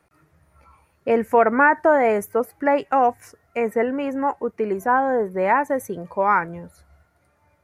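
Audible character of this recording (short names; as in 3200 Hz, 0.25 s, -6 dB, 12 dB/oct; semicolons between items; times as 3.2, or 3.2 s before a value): noise floor -64 dBFS; spectral tilt +0.5 dB/oct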